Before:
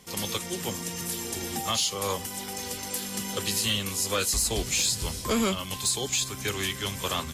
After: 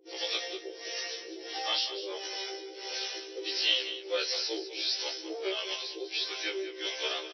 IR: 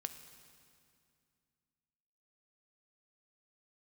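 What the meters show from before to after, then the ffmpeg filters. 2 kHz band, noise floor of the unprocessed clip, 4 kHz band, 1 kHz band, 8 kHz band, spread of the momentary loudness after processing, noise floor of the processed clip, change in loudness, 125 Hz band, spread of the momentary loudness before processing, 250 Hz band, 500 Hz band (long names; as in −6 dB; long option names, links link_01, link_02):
−2.0 dB, −38 dBFS, −0.5 dB, −8.0 dB, −16.5 dB, 8 LU, −45 dBFS, −4.5 dB, below −40 dB, 7 LU, −11.5 dB, −3.0 dB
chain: -filter_complex "[0:a]asplit=2[link_01][link_02];[link_02]alimiter=level_in=3dB:limit=-24dB:level=0:latency=1:release=196,volume=-3dB,volume=-0.5dB[link_03];[link_01][link_03]amix=inputs=2:normalize=0,acrossover=split=410[link_04][link_05];[link_04]aeval=exprs='val(0)*(1-1/2+1/2*cos(2*PI*1.5*n/s))':channel_layout=same[link_06];[link_05]aeval=exprs='val(0)*(1-1/2-1/2*cos(2*PI*1.5*n/s))':channel_layout=same[link_07];[link_06][link_07]amix=inputs=2:normalize=0,aeval=exprs='0.237*(cos(1*acos(clip(val(0)/0.237,-1,1)))-cos(1*PI/2))+0.0168*(cos(6*acos(clip(val(0)/0.237,-1,1)))-cos(6*PI/2))':channel_layout=same,asoftclip=type=tanh:threshold=-20.5dB,areverse,acompressor=mode=upward:threshold=-35dB:ratio=2.5,areverse,aecho=1:1:5.8:0.31,afftfilt=real='re*between(b*sr/4096,310,6000)':imag='im*between(b*sr/4096,310,6000)':win_size=4096:overlap=0.75,equalizer=frequency=1100:width_type=o:width=0.57:gain=-13,aecho=1:1:198:0.266,afftfilt=real='re*1.73*eq(mod(b,3),0)':imag='im*1.73*eq(mod(b,3),0)':win_size=2048:overlap=0.75,volume=3.5dB"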